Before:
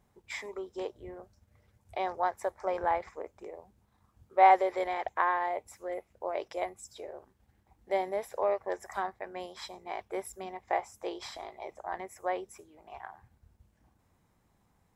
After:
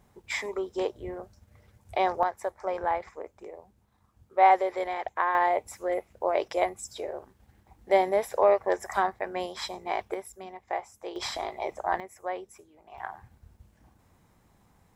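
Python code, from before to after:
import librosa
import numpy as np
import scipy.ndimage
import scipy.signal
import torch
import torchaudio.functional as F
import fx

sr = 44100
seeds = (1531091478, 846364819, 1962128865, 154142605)

y = fx.gain(x, sr, db=fx.steps((0.0, 7.5), (2.23, 1.0), (5.35, 8.0), (10.14, -1.5), (11.16, 9.5), (12.0, -1.0), (12.98, 7.5)))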